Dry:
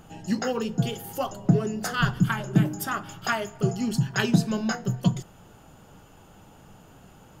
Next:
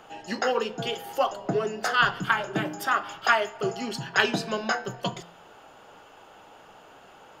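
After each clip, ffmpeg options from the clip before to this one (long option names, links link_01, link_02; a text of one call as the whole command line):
ffmpeg -i in.wav -filter_complex "[0:a]acrossover=split=380 4900:gain=0.0891 1 0.2[link_01][link_02][link_03];[link_01][link_02][link_03]amix=inputs=3:normalize=0,bandreject=frequency=171.7:width_type=h:width=4,bandreject=frequency=343.4:width_type=h:width=4,bandreject=frequency=515.1:width_type=h:width=4,bandreject=frequency=686.8:width_type=h:width=4,bandreject=frequency=858.5:width_type=h:width=4,bandreject=frequency=1030.2:width_type=h:width=4,bandreject=frequency=1201.9:width_type=h:width=4,bandreject=frequency=1373.6:width_type=h:width=4,bandreject=frequency=1545.3:width_type=h:width=4,bandreject=frequency=1717:width_type=h:width=4,bandreject=frequency=1888.7:width_type=h:width=4,bandreject=frequency=2060.4:width_type=h:width=4,bandreject=frequency=2232.1:width_type=h:width=4,bandreject=frequency=2403.8:width_type=h:width=4,bandreject=frequency=2575.5:width_type=h:width=4,bandreject=frequency=2747.2:width_type=h:width=4,bandreject=frequency=2918.9:width_type=h:width=4,bandreject=frequency=3090.6:width_type=h:width=4,bandreject=frequency=3262.3:width_type=h:width=4,bandreject=frequency=3434:width_type=h:width=4,bandreject=frequency=3605.7:width_type=h:width=4,bandreject=frequency=3777.4:width_type=h:width=4,bandreject=frequency=3949.1:width_type=h:width=4,bandreject=frequency=4120.8:width_type=h:width=4,bandreject=frequency=4292.5:width_type=h:width=4,bandreject=frequency=4464.2:width_type=h:width=4,bandreject=frequency=4635.9:width_type=h:width=4,bandreject=frequency=4807.6:width_type=h:width=4,bandreject=frequency=4979.3:width_type=h:width=4,bandreject=frequency=5151:width_type=h:width=4,volume=6dB" out.wav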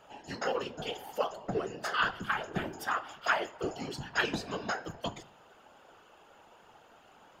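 ffmpeg -i in.wav -af "afftfilt=real='hypot(re,im)*cos(2*PI*random(0))':imag='hypot(re,im)*sin(2*PI*random(1))':win_size=512:overlap=0.75,volume=-1.5dB" out.wav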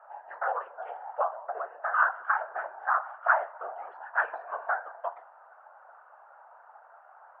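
ffmpeg -i in.wav -af "asuperpass=centerf=1000:order=8:qfactor=1,volume=6.5dB" out.wav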